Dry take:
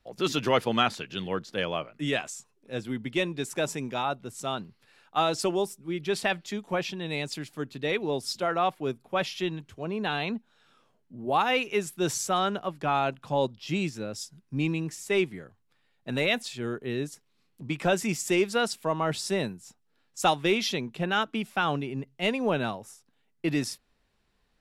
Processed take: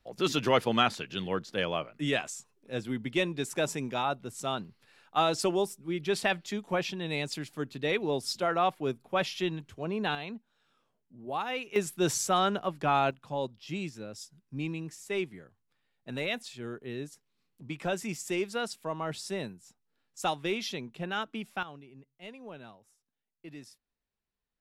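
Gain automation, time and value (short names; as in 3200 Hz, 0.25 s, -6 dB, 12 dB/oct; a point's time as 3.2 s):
-1 dB
from 10.15 s -9 dB
from 11.76 s 0 dB
from 13.11 s -7 dB
from 21.63 s -19 dB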